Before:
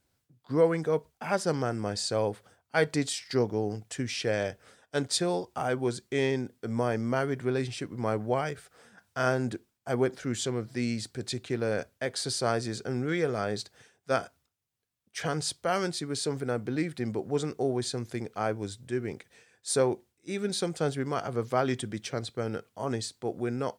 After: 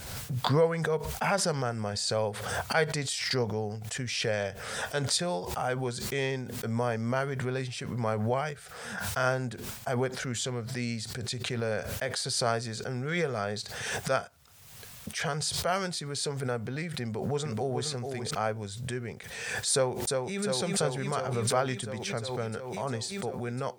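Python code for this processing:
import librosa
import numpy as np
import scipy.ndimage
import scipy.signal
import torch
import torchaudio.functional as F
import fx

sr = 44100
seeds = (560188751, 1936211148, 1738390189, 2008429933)

y = fx.echo_throw(x, sr, start_s=17.02, length_s=0.85, ms=430, feedback_pct=10, wet_db=-5.5)
y = fx.echo_throw(y, sr, start_s=19.72, length_s=0.69, ms=350, feedback_pct=80, wet_db=-4.0)
y = fx.peak_eq(y, sr, hz=310.0, db=-15.0, octaves=0.47)
y = fx.pre_swell(y, sr, db_per_s=37.0)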